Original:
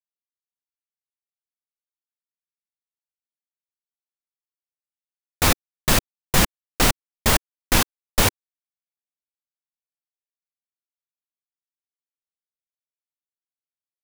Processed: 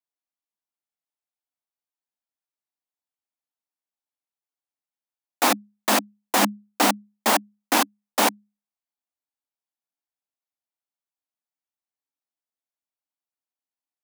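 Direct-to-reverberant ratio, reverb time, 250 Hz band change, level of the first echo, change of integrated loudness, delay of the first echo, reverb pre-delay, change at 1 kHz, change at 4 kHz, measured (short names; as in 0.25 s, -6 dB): none, none, +0.5 dB, none, -1.5 dB, none, none, +4.0 dB, -2.5 dB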